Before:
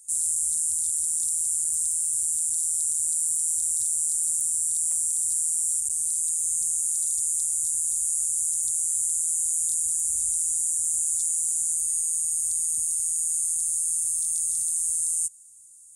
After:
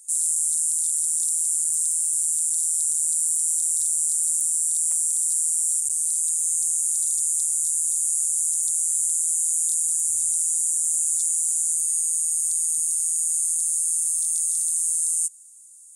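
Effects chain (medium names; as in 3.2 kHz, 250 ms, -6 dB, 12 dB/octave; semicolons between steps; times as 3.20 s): tone controls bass -10 dB, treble -2 dB; trim +4.5 dB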